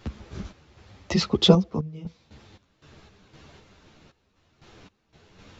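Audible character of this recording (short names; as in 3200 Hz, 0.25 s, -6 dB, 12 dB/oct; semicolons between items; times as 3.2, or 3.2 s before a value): random-step tremolo 3.9 Hz, depth 95%; a shimmering, thickened sound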